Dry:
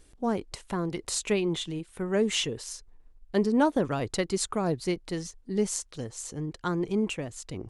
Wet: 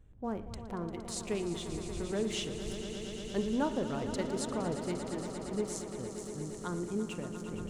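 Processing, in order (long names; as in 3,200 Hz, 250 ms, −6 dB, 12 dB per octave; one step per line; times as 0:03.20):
adaptive Wiener filter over 9 samples
wind on the microphone 85 Hz −43 dBFS
parametric band 2,200 Hz −2 dB
echo that builds up and dies away 116 ms, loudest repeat 5, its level −12 dB
on a send at −13 dB: convolution reverb RT60 0.60 s, pre-delay 40 ms
on the sum: level −8.5 dB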